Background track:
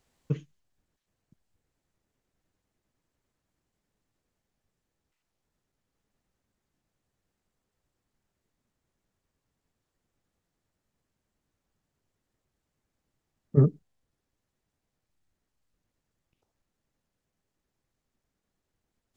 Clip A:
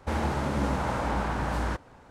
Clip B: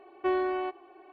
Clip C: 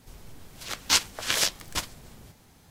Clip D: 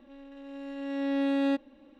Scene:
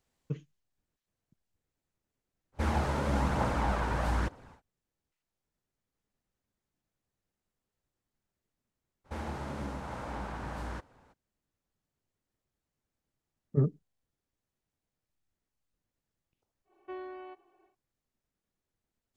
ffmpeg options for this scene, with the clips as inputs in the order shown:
-filter_complex "[1:a]asplit=2[s0][s1];[0:a]volume=0.473[s2];[s0]aphaser=in_gain=1:out_gain=1:delay=2.3:decay=0.32:speed=1.1:type=triangular[s3];[s1]alimiter=limit=0.119:level=0:latency=1:release=327[s4];[s3]atrim=end=2.1,asetpts=PTS-STARTPTS,volume=0.75,afade=t=in:d=0.1,afade=t=out:st=2:d=0.1,adelay=2520[s5];[s4]atrim=end=2.1,asetpts=PTS-STARTPTS,volume=0.335,afade=t=in:d=0.02,afade=t=out:st=2.08:d=0.02,adelay=9040[s6];[2:a]atrim=end=1.12,asetpts=PTS-STARTPTS,volume=0.188,afade=t=in:d=0.1,afade=t=out:st=1.02:d=0.1,adelay=16640[s7];[s2][s5][s6][s7]amix=inputs=4:normalize=0"

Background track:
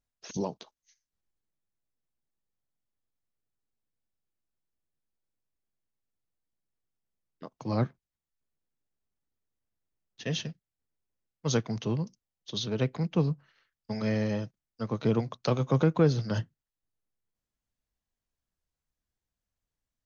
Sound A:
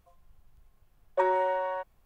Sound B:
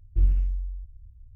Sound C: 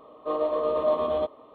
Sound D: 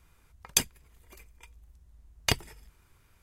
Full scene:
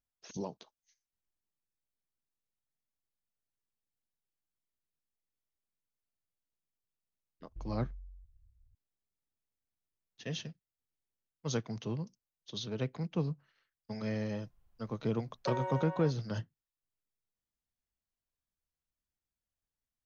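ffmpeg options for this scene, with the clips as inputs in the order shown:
-filter_complex "[0:a]volume=0.447[s0];[2:a]acompressor=threshold=0.0708:ratio=6:attack=3.2:release=140:knee=1:detection=peak,atrim=end=1.35,asetpts=PTS-STARTPTS,volume=0.133,afade=t=in:d=0.004:c=hsin,afade=t=out:st=1.346:d=0.004:c=hsin,adelay=7400[s1];[1:a]atrim=end=2.05,asetpts=PTS-STARTPTS,volume=0.282,afade=t=in:d=0.004:c=hsin,afade=t=out:st=2.046:d=0.004:c=hsin,adelay=629748S[s2];[s0][s1][s2]amix=inputs=3:normalize=0"

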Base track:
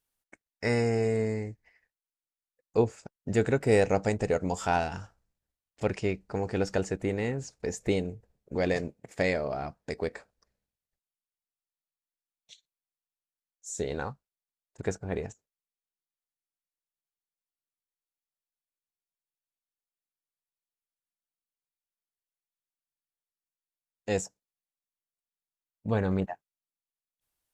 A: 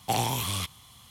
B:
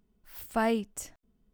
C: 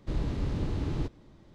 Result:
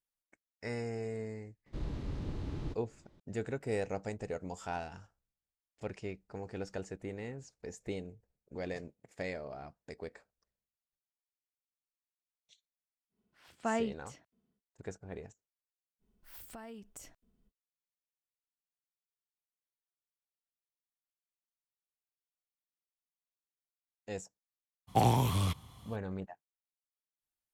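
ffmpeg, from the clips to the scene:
-filter_complex "[2:a]asplit=2[s0][s1];[0:a]volume=0.251[s2];[s0]highpass=120,lowpass=4600[s3];[s1]acompressor=threshold=0.00891:ratio=6:attack=3.2:release=140:knee=1:detection=peak[s4];[1:a]tiltshelf=f=1300:g=7.5[s5];[3:a]atrim=end=1.54,asetpts=PTS-STARTPTS,volume=0.398,afade=t=in:d=0.004:c=hsin,afade=t=out:st=1.536:d=0.004:c=hsin,adelay=1660[s6];[s3]atrim=end=1.53,asetpts=PTS-STARTPTS,volume=0.531,afade=t=in:d=0.1,afade=t=out:st=1.43:d=0.1,adelay=13090[s7];[s4]atrim=end=1.53,asetpts=PTS-STARTPTS,volume=0.631,afade=t=in:d=0.05,afade=t=out:st=1.48:d=0.05,adelay=15990[s8];[s5]atrim=end=1.1,asetpts=PTS-STARTPTS,volume=0.668,afade=t=in:d=0.02,afade=t=out:st=1.08:d=0.02,adelay=24870[s9];[s2][s6][s7][s8][s9]amix=inputs=5:normalize=0"

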